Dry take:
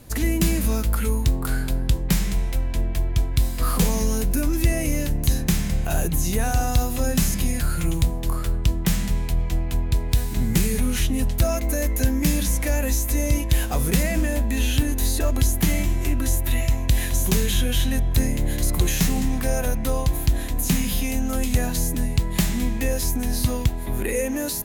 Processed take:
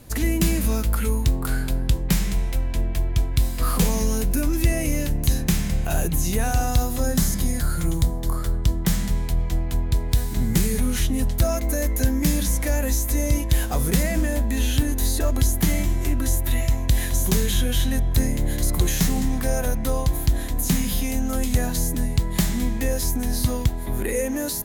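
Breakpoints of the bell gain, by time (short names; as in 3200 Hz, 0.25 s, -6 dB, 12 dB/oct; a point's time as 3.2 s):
bell 2600 Hz 0.35 oct
6.62 s 0 dB
7.19 s -12 dB
8.31 s -12 dB
9.01 s -5 dB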